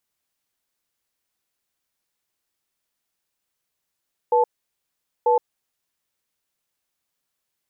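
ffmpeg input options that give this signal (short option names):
-f lavfi -i "aevalsrc='0.141*(sin(2*PI*485*t)+sin(2*PI*874*t))*clip(min(mod(t,0.94),0.12-mod(t,0.94))/0.005,0,1)':d=1.66:s=44100"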